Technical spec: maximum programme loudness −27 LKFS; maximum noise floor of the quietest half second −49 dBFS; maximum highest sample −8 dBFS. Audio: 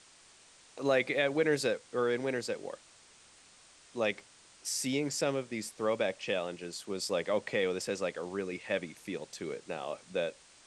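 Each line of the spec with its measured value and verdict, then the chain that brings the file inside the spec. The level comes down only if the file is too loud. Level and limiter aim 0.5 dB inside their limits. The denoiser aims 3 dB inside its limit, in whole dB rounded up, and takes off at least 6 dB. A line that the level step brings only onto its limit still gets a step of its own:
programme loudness −33.5 LKFS: in spec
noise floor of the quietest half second −59 dBFS: in spec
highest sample −15.5 dBFS: in spec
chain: no processing needed

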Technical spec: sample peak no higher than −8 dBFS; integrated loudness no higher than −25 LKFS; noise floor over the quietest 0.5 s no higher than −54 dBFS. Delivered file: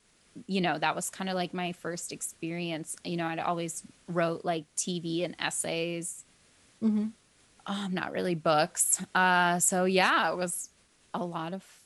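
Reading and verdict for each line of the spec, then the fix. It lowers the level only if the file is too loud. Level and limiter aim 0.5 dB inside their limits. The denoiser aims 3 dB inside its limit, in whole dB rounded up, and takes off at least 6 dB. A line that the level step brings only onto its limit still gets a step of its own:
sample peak −10.0 dBFS: in spec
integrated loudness −29.5 LKFS: in spec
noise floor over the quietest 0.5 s −62 dBFS: in spec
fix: no processing needed

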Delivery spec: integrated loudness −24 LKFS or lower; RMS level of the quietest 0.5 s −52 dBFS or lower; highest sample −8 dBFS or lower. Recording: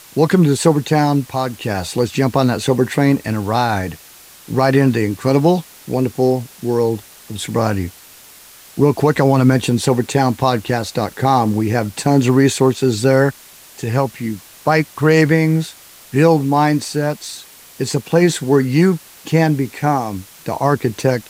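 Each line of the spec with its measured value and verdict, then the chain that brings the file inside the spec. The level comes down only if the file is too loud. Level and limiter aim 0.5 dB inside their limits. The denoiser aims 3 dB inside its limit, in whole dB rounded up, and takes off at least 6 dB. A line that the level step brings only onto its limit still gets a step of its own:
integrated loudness −16.5 LKFS: out of spec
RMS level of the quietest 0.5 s −42 dBFS: out of spec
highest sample −1.5 dBFS: out of spec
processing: broadband denoise 6 dB, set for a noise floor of −42 dBFS
level −8 dB

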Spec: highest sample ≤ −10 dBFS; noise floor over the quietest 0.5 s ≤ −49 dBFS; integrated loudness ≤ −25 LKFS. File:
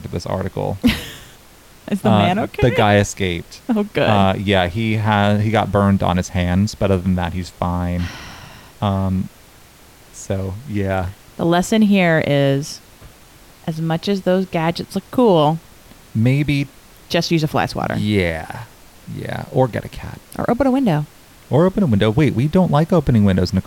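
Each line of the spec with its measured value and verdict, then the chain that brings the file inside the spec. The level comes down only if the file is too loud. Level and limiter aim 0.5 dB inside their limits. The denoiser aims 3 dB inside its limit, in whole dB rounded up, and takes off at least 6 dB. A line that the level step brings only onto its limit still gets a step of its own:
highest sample −3.5 dBFS: out of spec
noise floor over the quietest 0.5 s −45 dBFS: out of spec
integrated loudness −18.0 LKFS: out of spec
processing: level −7.5 dB

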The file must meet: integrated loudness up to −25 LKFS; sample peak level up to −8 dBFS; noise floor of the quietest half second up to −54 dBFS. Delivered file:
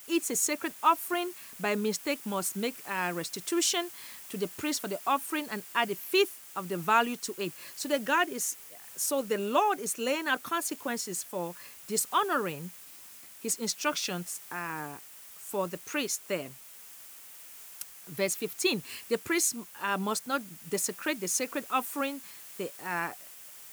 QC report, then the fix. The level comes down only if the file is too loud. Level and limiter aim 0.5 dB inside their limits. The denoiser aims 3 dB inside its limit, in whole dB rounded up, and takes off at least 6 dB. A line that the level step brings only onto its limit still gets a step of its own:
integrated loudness −31.0 LKFS: in spec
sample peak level −11.5 dBFS: in spec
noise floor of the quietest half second −50 dBFS: out of spec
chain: broadband denoise 7 dB, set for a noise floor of −50 dBFS

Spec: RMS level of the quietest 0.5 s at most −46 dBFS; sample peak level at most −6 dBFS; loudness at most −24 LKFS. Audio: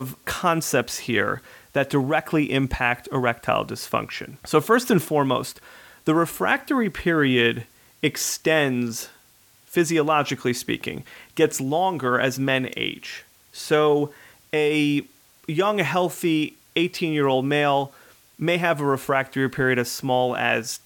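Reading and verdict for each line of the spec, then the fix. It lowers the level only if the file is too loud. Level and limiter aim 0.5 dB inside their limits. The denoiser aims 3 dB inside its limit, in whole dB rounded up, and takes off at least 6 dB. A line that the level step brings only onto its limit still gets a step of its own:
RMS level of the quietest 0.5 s −56 dBFS: in spec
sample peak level −5.0 dBFS: out of spec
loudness −22.5 LKFS: out of spec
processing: level −2 dB

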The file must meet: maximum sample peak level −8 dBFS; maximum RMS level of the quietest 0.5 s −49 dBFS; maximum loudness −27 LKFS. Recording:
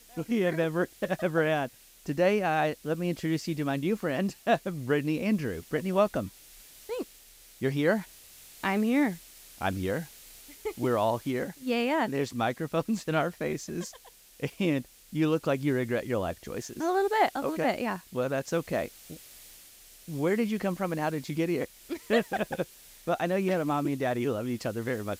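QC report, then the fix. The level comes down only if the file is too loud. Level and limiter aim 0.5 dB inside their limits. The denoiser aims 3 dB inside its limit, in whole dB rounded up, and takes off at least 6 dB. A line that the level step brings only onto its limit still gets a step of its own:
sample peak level −11.0 dBFS: in spec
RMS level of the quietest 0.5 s −54 dBFS: in spec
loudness −29.5 LKFS: in spec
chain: no processing needed

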